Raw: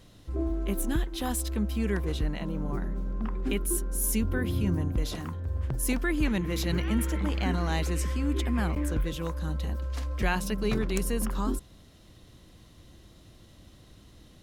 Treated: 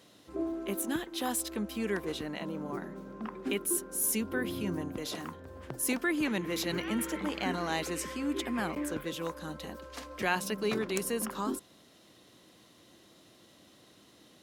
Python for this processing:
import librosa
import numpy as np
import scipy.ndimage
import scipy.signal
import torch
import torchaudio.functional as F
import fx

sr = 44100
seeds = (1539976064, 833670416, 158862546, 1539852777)

y = scipy.signal.sosfilt(scipy.signal.butter(2, 260.0, 'highpass', fs=sr, output='sos'), x)